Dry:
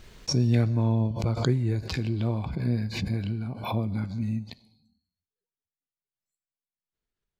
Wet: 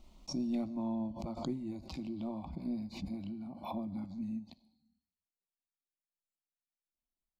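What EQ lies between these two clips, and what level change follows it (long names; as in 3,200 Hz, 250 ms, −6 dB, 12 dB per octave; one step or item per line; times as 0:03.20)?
high-shelf EQ 2,400 Hz −8.5 dB
phaser with its sweep stopped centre 440 Hz, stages 6
−6.0 dB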